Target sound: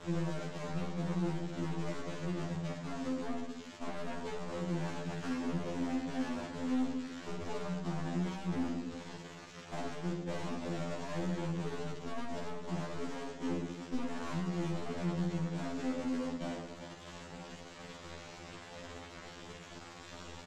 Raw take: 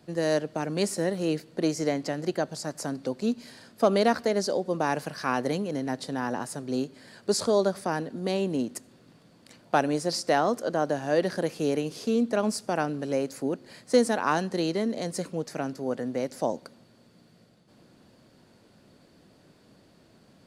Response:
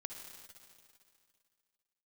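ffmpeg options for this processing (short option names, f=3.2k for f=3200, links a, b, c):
-filter_complex "[0:a]aeval=exprs='val(0)+0.5*0.0141*sgn(val(0))':c=same,lowshelf=f=220:g=11,acrossover=split=260[a][b];[b]acompressor=threshold=-33dB:ratio=6[c];[a][c]amix=inputs=2:normalize=0,aresample=8000,aresample=44100,aeval=exprs='0.188*(cos(1*acos(clip(val(0)/0.188,-1,1)))-cos(1*PI/2))+0.0075*(cos(7*acos(clip(val(0)/0.188,-1,1)))-cos(7*PI/2))':c=same,aresample=16000,aeval=exprs='val(0)*gte(abs(val(0)),0.0188)':c=same,aresample=44100,aecho=1:1:50|110|182|268.4|372.1:0.631|0.398|0.251|0.158|0.1,aeval=exprs='(tanh(39.8*val(0)+0.45)-tanh(0.45))/39.8':c=same,afftfilt=real='re*2*eq(mod(b,4),0)':imag='im*2*eq(mod(b,4),0)':win_size=2048:overlap=0.75"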